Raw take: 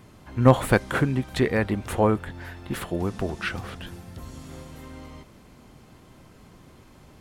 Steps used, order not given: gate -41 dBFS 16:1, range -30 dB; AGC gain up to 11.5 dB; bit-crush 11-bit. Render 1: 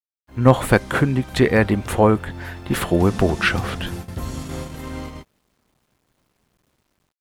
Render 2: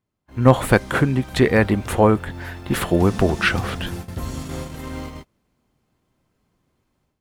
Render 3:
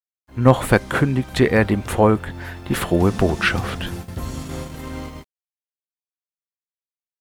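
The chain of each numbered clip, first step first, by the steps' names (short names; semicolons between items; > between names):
gate > AGC > bit-crush; bit-crush > gate > AGC; gate > bit-crush > AGC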